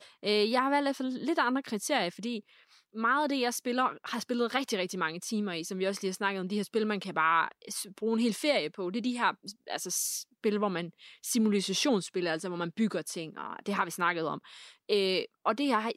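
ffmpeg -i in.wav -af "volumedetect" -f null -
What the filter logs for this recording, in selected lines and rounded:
mean_volume: -31.1 dB
max_volume: -13.6 dB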